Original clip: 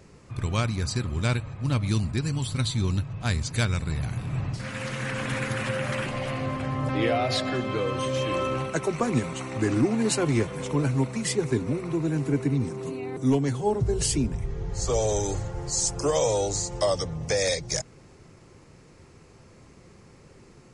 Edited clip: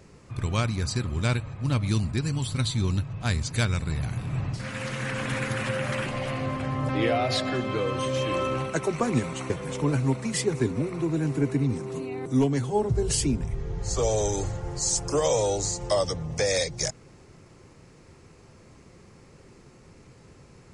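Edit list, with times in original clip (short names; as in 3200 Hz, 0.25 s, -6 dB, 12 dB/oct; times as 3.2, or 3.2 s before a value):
9.5–10.41 cut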